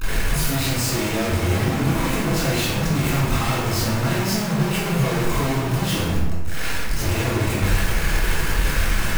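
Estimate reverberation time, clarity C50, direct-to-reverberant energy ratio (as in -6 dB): 1.1 s, -1.5 dB, -11.5 dB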